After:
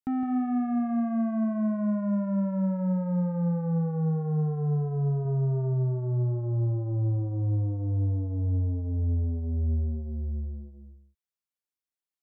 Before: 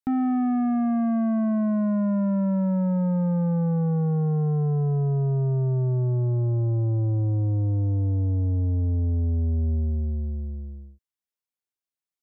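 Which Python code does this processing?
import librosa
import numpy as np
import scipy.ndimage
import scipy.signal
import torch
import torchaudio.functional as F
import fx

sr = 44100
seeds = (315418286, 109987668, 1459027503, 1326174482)

y = fx.peak_eq(x, sr, hz=1400.0, db=-6.0, octaves=0.54, at=(8.67, 10.08))
y = y + 10.0 ** (-9.0 / 20.0) * np.pad(y, (int(162 * sr / 1000.0), 0))[:len(y)]
y = fx.env_flatten(y, sr, amount_pct=50, at=(5.25, 5.74))
y = F.gain(torch.from_numpy(y), -4.5).numpy()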